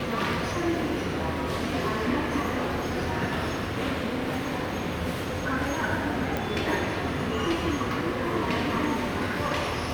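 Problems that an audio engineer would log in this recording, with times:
6.37 s: pop

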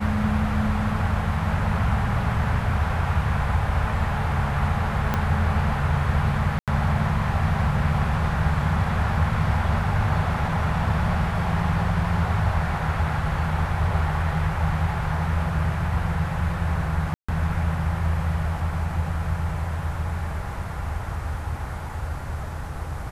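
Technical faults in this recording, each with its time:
5.14 s: pop -10 dBFS
6.59–6.68 s: dropout 87 ms
17.14–17.29 s: dropout 145 ms

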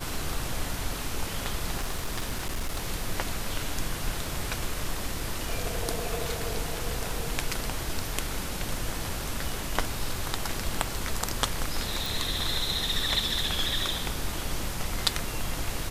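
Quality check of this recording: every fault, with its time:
1.79–2.89 s: clipped -25.5 dBFS
12.06 s: pop

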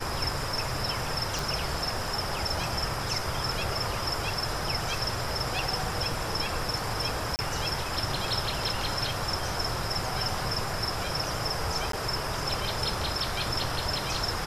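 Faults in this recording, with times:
1.39 s: pop
7.36–7.39 s: dropout 29 ms
11.92–11.93 s: dropout 13 ms

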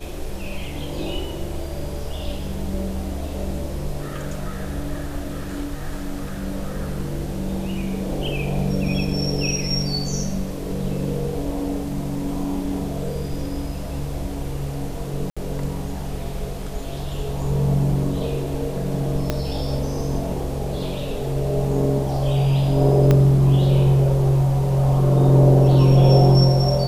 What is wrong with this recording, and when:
15.30–15.37 s: dropout 66 ms
19.30 s: pop -7 dBFS
23.11 s: pop -6 dBFS

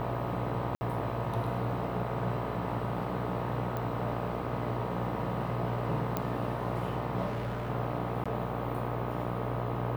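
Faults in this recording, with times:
buzz 60 Hz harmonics 21 -37 dBFS
0.75–0.81 s: dropout 60 ms
3.77 s: pop -22 dBFS
6.17 s: pop -16 dBFS
7.26–7.70 s: clipped -30.5 dBFS
8.24–8.26 s: dropout 16 ms

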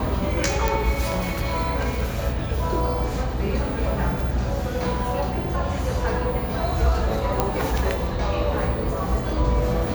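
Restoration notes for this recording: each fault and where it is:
0.68 s: pop
7.40 s: pop -5 dBFS

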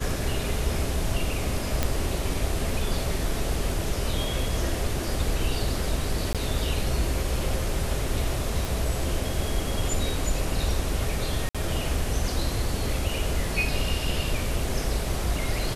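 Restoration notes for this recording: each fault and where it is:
1.83 s: pop -8 dBFS
6.33–6.35 s: dropout 17 ms
8.65 s: pop
11.49–11.55 s: dropout 56 ms

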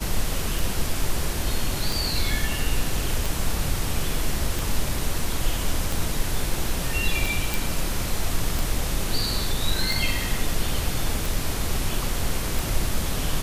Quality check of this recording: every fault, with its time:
tick 45 rpm
7.54 s: pop

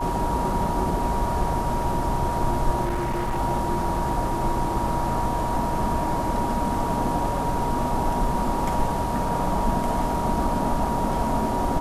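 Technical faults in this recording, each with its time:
whine 950 Hz -27 dBFS
2.84–3.39 s: clipped -22 dBFS

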